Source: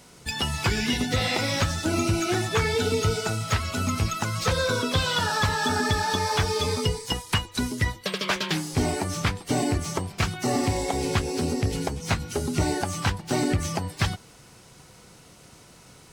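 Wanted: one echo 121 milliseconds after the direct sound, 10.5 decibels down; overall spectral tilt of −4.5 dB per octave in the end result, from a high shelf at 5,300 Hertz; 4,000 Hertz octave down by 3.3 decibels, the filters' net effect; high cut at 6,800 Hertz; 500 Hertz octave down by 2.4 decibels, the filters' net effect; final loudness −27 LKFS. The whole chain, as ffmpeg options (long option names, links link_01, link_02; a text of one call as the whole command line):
ffmpeg -i in.wav -af "lowpass=6800,equalizer=frequency=500:width_type=o:gain=-3,equalizer=frequency=4000:width_type=o:gain=-7,highshelf=frequency=5300:gain=7,aecho=1:1:121:0.299,volume=-0.5dB" out.wav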